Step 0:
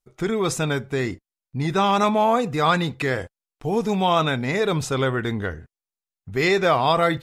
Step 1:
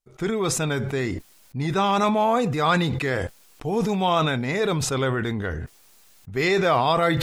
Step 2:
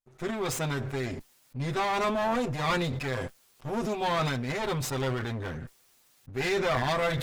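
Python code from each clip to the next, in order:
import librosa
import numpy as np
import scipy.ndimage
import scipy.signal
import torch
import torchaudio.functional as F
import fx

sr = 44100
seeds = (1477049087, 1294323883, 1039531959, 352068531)

y1 = fx.sustainer(x, sr, db_per_s=31.0)
y1 = y1 * 10.0 ** (-2.0 / 20.0)
y2 = fx.lower_of_two(y1, sr, delay_ms=7.8)
y2 = y2 * 10.0 ** (-6.0 / 20.0)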